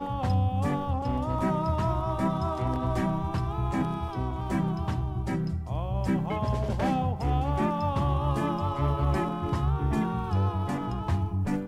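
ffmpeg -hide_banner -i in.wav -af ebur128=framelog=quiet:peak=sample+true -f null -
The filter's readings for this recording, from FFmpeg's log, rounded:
Integrated loudness:
  I:         -28.6 LUFS
  Threshold: -38.6 LUFS
Loudness range:
  LRA:         2.3 LU
  Threshold: -48.7 LUFS
  LRA low:   -30.0 LUFS
  LRA high:  -27.7 LUFS
Sample peak:
  Peak:      -14.5 dBFS
True peak:
  Peak:      -14.5 dBFS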